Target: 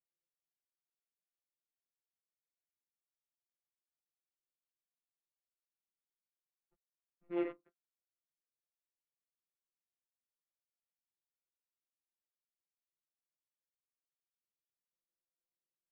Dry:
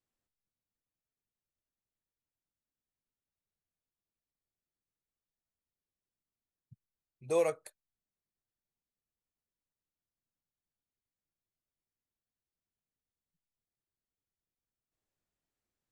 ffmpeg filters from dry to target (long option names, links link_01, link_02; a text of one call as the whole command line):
ffmpeg -i in.wav -filter_complex "[0:a]acrusher=bits=2:mode=log:mix=0:aa=0.000001,afftfilt=real='hypot(re,im)*cos(PI*b)':imag='0':win_size=1024:overlap=0.75,adynamicsmooth=sensitivity=7.5:basefreq=860,asplit=2[link_01][link_02];[link_02]adelay=13,volume=-2dB[link_03];[link_01][link_03]amix=inputs=2:normalize=0,highpass=frequency=260:width_type=q:width=0.5412,highpass=frequency=260:width_type=q:width=1.307,lowpass=frequency=2900:width_type=q:width=0.5176,lowpass=frequency=2900:width_type=q:width=0.7071,lowpass=frequency=2900:width_type=q:width=1.932,afreqshift=-170,volume=-7dB" out.wav